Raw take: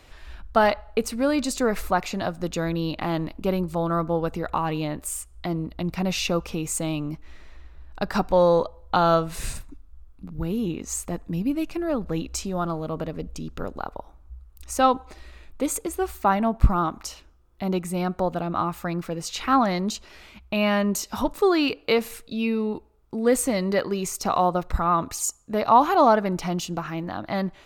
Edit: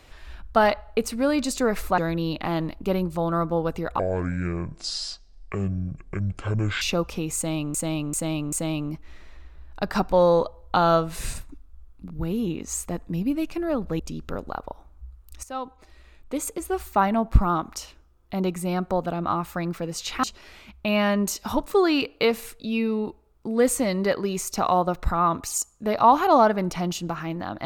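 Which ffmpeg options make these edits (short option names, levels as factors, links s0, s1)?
-filter_complex "[0:a]asplit=10[s0][s1][s2][s3][s4][s5][s6][s7][s8][s9];[s0]atrim=end=1.982[s10];[s1]atrim=start=2.558:end=4.574[s11];[s2]atrim=start=4.57:end=6.18,asetpts=PTS-STARTPTS,asetrate=25137,aresample=44100,atrim=end_sample=124563,asetpts=PTS-STARTPTS[s12];[s3]atrim=start=6.176:end=7.112[s13];[s4]atrim=start=6.718:end=7.112[s14];[s5]atrim=start=6.718:end=7.112[s15];[s6]atrim=start=6.718:end=12.192[s16];[s7]atrim=start=13.278:end=14.72,asetpts=PTS-STARTPTS,afade=t=out:st=1.438:d=0.004:c=hsin:silence=0.133352[s17];[s8]atrim=start=14.72:end=19.522,asetpts=PTS-STARTPTS,afade=t=in:d=1.46:silence=0.133352[s18];[s9]atrim=start=19.908[s19];[s10][s11]acrossfade=d=0.004:c1=hsin:c2=hsin[s20];[s20][s12]acrossfade=d=0.004:c1=hsin:c2=hsin[s21];[s21][s13]acrossfade=d=0.004:c1=hsin:c2=hsin[s22];[s22][s14]acrossfade=d=0.004:c1=hsin:c2=hsin[s23];[s23][s15]acrossfade=d=0.004:c1=hsin:c2=hsin[s24];[s24][s16]acrossfade=d=0.004:c1=hsin:c2=hsin[s25];[s17][s18]concat=n=2:v=0:a=1[s26];[s25][s26]acrossfade=d=0.004:c1=hsin:c2=hsin[s27];[s27][s19]acrossfade=d=0.004:c1=hsin:c2=hsin"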